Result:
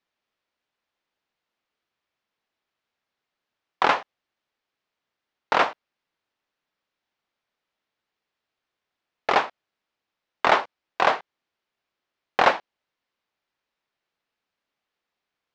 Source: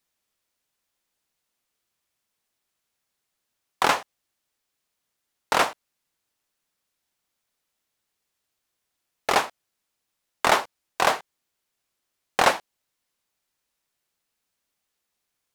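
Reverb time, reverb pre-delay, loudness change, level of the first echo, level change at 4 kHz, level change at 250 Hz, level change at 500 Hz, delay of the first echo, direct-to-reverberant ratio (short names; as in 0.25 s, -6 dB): none, none, +0.5 dB, none, -2.5 dB, 0.0 dB, +1.0 dB, none, none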